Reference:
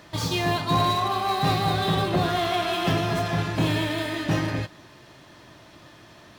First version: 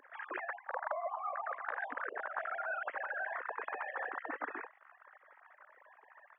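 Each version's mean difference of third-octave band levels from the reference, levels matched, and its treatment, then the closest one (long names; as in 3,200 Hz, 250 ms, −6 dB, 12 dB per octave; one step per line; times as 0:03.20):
20.0 dB: three sine waves on the formant tracks
Chebyshev band-pass filter 260–1,700 Hz, order 4
gate on every frequency bin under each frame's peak −10 dB weak
reversed playback
downward compressor 10 to 1, threshold −42 dBFS, peak gain reduction 21.5 dB
reversed playback
level +6.5 dB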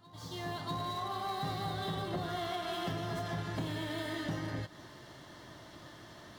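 4.0 dB: fade in at the beginning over 1.64 s
notch filter 2,500 Hz, Q 5.8
downward compressor 6 to 1, threshold −32 dBFS, peak gain reduction 12.5 dB
backwards echo 642 ms −20.5 dB
level −2.5 dB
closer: second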